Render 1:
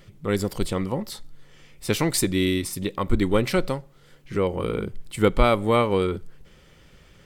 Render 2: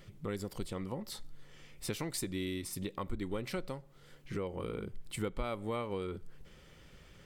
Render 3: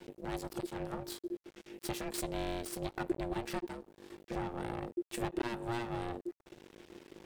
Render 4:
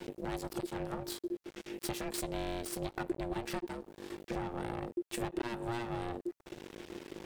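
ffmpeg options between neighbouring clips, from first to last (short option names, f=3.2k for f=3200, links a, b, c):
-af "acompressor=threshold=-33dB:ratio=3,volume=-4.5dB"
-af "aeval=exprs='val(0)+0.00126*(sin(2*PI*50*n/s)+sin(2*PI*2*50*n/s)/2+sin(2*PI*3*50*n/s)/3+sin(2*PI*4*50*n/s)/4+sin(2*PI*5*50*n/s)/5)':c=same,aeval=exprs='max(val(0),0)':c=same,aeval=exprs='val(0)*sin(2*PI*350*n/s)':c=same,volume=6.5dB"
-af "acompressor=threshold=-46dB:ratio=2,volume=7.5dB"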